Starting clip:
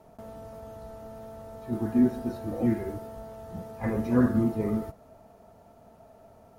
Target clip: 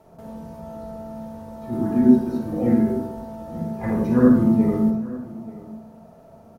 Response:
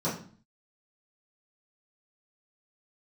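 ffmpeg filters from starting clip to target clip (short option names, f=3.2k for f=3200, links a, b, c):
-filter_complex "[0:a]aecho=1:1:882:0.119,asplit=2[a][b];[1:a]atrim=start_sample=2205,adelay=46[c];[b][c]afir=irnorm=-1:irlink=0,volume=-10.5dB[d];[a][d]amix=inputs=2:normalize=0,volume=1.5dB"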